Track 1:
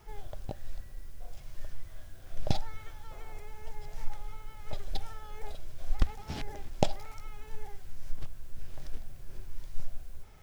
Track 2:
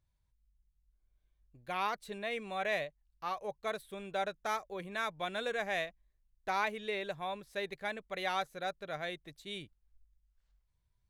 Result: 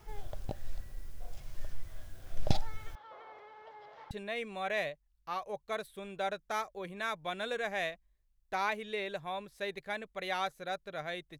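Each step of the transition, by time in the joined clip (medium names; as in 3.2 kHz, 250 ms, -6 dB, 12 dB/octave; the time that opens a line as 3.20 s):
track 1
2.95–4.11 s: cabinet simulation 480–3500 Hz, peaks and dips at 530 Hz +5 dB, 1.1 kHz +7 dB, 2.5 kHz -8 dB
4.11 s: go over to track 2 from 2.06 s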